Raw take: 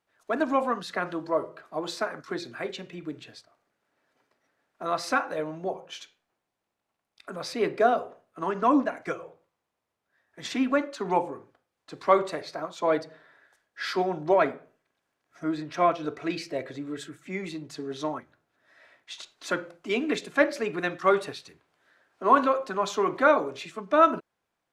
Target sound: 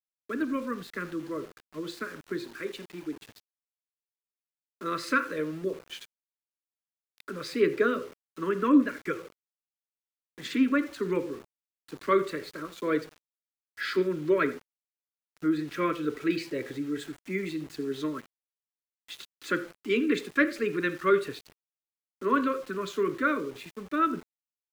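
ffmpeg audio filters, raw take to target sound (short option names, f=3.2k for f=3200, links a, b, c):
-filter_complex "[0:a]equalizer=f=5.7k:w=7:g=-8,aecho=1:1:83:0.126,acrossover=split=280[a][b];[b]dynaudnorm=f=590:g=11:m=7dB[c];[a][c]amix=inputs=2:normalize=0,asuperstop=centerf=760:order=4:qfactor=0.84,highshelf=f=2.1k:g=-9,asettb=1/sr,asplit=3[d][e][f];[d]atrim=end=2.444[g];[e]atrim=start=2.44:end=3.22,asetpts=PTS-STARTPTS,afade=t=in:d=0.004:c=qsin,afade=t=out:st=0.776:d=0.004:c=qsin,highpass=210[h];[f]atrim=start=3.216[i];[g][h]acrossfade=d=0.004:c1=hsin:c2=qsin[j];[j][i]acrossfade=d=0.004:c1=qsin:c2=hsin,aeval=exprs='val(0)*gte(abs(val(0)),0.00531)':c=same"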